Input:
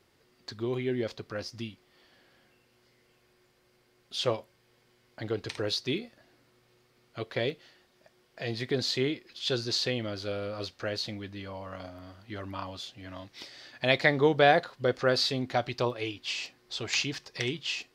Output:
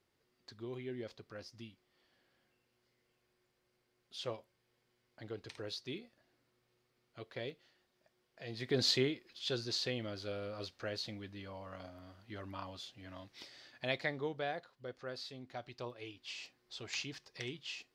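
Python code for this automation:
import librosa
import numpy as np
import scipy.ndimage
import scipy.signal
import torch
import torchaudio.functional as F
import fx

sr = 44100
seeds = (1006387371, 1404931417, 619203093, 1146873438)

y = fx.gain(x, sr, db=fx.line((8.46, -12.5), (8.89, 0.5), (9.14, -7.5), (13.56, -7.5), (14.55, -19.0), (15.32, -19.0), (16.43, -11.5)))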